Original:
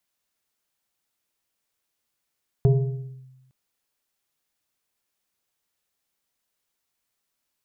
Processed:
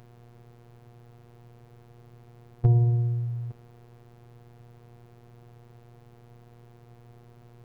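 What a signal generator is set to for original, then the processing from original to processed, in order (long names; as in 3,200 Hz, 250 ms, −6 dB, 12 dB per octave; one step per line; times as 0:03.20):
two-operator FM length 0.86 s, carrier 130 Hz, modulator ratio 2.13, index 0.82, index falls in 0.62 s linear, decay 1.11 s, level −12 dB
compressor on every frequency bin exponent 0.4
phases set to zero 119 Hz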